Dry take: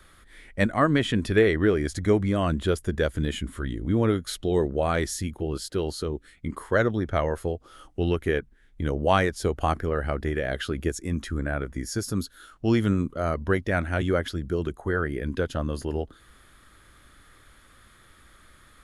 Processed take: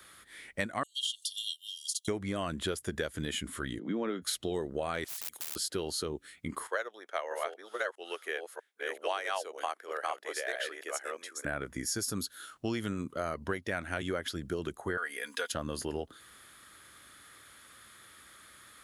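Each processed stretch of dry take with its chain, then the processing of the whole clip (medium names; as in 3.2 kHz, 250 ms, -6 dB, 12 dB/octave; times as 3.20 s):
0.83–2.08 s: brick-wall FIR high-pass 2.8 kHz + comb 2.5 ms, depth 99%
3.79–4.22 s: steep high-pass 160 Hz 48 dB/octave + distance through air 160 m
5.04–5.56 s: integer overflow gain 25.5 dB + spectrum-flattening compressor 10:1
6.67–11.45 s: chunks repeated in reverse 643 ms, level -1 dB + high-pass 470 Hz 24 dB/octave + upward expansion, over -36 dBFS
14.97–15.52 s: high-pass 770 Hz + treble shelf 5.5 kHz +8 dB + comb 4.2 ms, depth 78%
whole clip: high-pass 81 Hz; tilt EQ +2 dB/octave; compression 6:1, threshold -29 dBFS; trim -1 dB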